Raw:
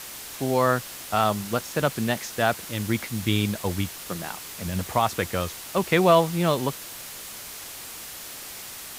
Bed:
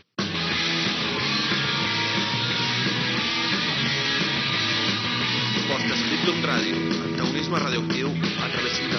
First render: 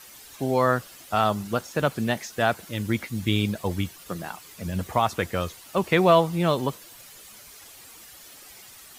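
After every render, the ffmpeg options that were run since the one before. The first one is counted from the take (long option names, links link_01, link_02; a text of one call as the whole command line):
ffmpeg -i in.wav -af "afftdn=noise_reduction=11:noise_floor=-39" out.wav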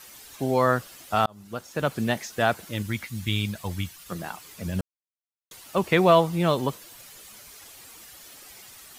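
ffmpeg -i in.wav -filter_complex "[0:a]asettb=1/sr,asplit=3[link_01][link_02][link_03];[link_01]atrim=end=2.824[link_04];[link_02]atrim=start=2.82:end=4.12,asetpts=PTS-STARTPTS,afade=type=in:duration=0.004:curve=qsin,afade=type=out:start_time=1.296:duration=0.004:curve=qsin,equalizer=frequency=410:width_type=o:width=2:gain=-10[link_05];[link_03]atrim=start=4.116[link_06];[link_04][link_05]acrossfade=duration=0.004:curve1=hsin:curve2=qsin[link_07];[link_07][link_06]acrossfade=duration=0.004:curve1=qsin:curve2=hsin,asplit=4[link_08][link_09][link_10][link_11];[link_08]atrim=end=1.26,asetpts=PTS-STARTPTS,afade=type=out:start_time=1.256:duration=0.004:curve=hsin[link_12];[link_09]atrim=start=1.26:end=4.81,asetpts=PTS-STARTPTS,afade=type=in:duration=0.75,afade=type=out:start_time=3.546:duration=0.004:curve=hsin[link_13];[link_10]atrim=start=4.81:end=5.51,asetpts=PTS-STARTPTS,volume=0[link_14];[link_11]atrim=start=5.51,asetpts=PTS-STARTPTS,afade=type=in:duration=0.004:curve=hsin[link_15];[link_12][link_13][link_14][link_15]concat=n=4:v=0:a=1" out.wav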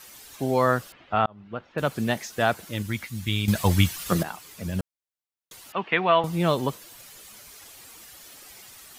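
ffmpeg -i in.wav -filter_complex "[0:a]asettb=1/sr,asplit=3[link_01][link_02][link_03];[link_01]atrim=end=0.924[link_04];[link_02]atrim=start=0.92:end=1.78,asetpts=PTS-STARTPTS,afade=type=in:duration=0.004:curve=qsin,afade=type=out:start_time=0.856:duration=0.004:curve=qsin,lowpass=frequency=3000:width=0.5412,lowpass=frequency=3000:width=1.3066[link_05];[link_03]atrim=start=1.776[link_06];[link_04][link_05]acrossfade=duration=0.004:curve1=hsin:curve2=qsin[link_07];[link_07][link_06]acrossfade=duration=0.004:curve1=qsin:curve2=hsin,asettb=1/sr,asplit=3[link_08][link_09][link_10];[link_08]atrim=end=5.724[link_11];[link_09]atrim=start=5.72:end=6.24,asetpts=PTS-STARTPTS,afade=type=in:duration=0.004:curve=qsin,afade=type=out:start_time=0.516:duration=0.004:curve=qsin,highpass=290,equalizer=frequency=360:width_type=q:width=4:gain=-7,equalizer=frequency=550:width_type=q:width=4:gain=-9,equalizer=frequency=1700:width_type=q:width=4:gain=3,equalizer=frequency=2900:width_type=q:width=4:gain=4,lowpass=frequency=3200:width=0.5412,lowpass=frequency=3200:width=1.3066[link_12];[link_10]atrim=start=6.236[link_13];[link_11][link_12]acrossfade=duration=0.004:curve1=hsin:curve2=qsin[link_14];[link_14][link_13]acrossfade=duration=0.004:curve1=qsin:curve2=hsin,asplit=3[link_15][link_16][link_17];[link_15]atrim=end=3.482[link_18];[link_16]atrim=start=3.478:end=4.232,asetpts=PTS-STARTPTS,volume=11dB[link_19];[link_17]atrim=start=4.228[link_20];[link_18][link_19]acrossfade=duration=0.004:curve1=hsin:curve2=hsin[link_21];[link_21][link_20]acrossfade=duration=0.004:curve1=hsin:curve2=hsin" out.wav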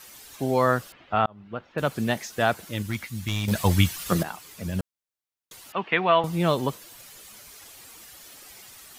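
ffmpeg -i in.wav -filter_complex "[0:a]asettb=1/sr,asplit=3[link_01][link_02][link_03];[link_01]atrim=end=2.794[link_04];[link_02]atrim=start=2.79:end=3.52,asetpts=PTS-STARTPTS,afade=type=in:duration=0.004:curve=qsin,afade=type=out:start_time=0.726:duration=0.004:curve=qsin,volume=20dB,asoftclip=hard,volume=-20dB[link_05];[link_03]atrim=start=3.516[link_06];[link_04][link_05]acrossfade=duration=0.004:curve1=hsin:curve2=qsin[link_07];[link_07][link_06]acrossfade=duration=0.004:curve1=qsin:curve2=hsin" out.wav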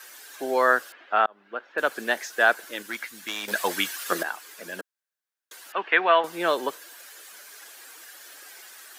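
ffmpeg -i in.wav -af "highpass=frequency=330:width=0.5412,highpass=frequency=330:width=1.3066,equalizer=frequency=1600:width=4.1:gain=11" out.wav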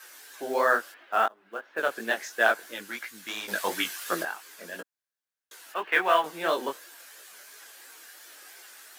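ffmpeg -i in.wav -af "acrusher=bits=6:mode=log:mix=0:aa=0.000001,flanger=delay=17:depth=5.4:speed=2.9" out.wav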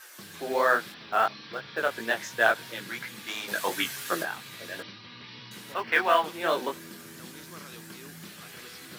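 ffmpeg -i in.wav -i bed.wav -filter_complex "[1:a]volume=-21.5dB[link_01];[0:a][link_01]amix=inputs=2:normalize=0" out.wav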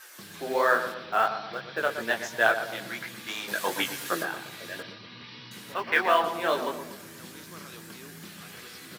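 ffmpeg -i in.wav -filter_complex "[0:a]asplit=2[link_01][link_02];[link_02]adelay=120,lowpass=frequency=1500:poles=1,volume=-8.5dB,asplit=2[link_03][link_04];[link_04]adelay=120,lowpass=frequency=1500:poles=1,volume=0.51,asplit=2[link_05][link_06];[link_06]adelay=120,lowpass=frequency=1500:poles=1,volume=0.51,asplit=2[link_07][link_08];[link_08]adelay=120,lowpass=frequency=1500:poles=1,volume=0.51,asplit=2[link_09][link_10];[link_10]adelay=120,lowpass=frequency=1500:poles=1,volume=0.51,asplit=2[link_11][link_12];[link_12]adelay=120,lowpass=frequency=1500:poles=1,volume=0.51[link_13];[link_01][link_03][link_05][link_07][link_09][link_11][link_13]amix=inputs=7:normalize=0" out.wav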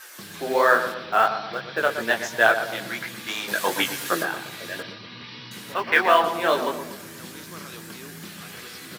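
ffmpeg -i in.wav -af "volume=5dB,alimiter=limit=-3dB:level=0:latency=1" out.wav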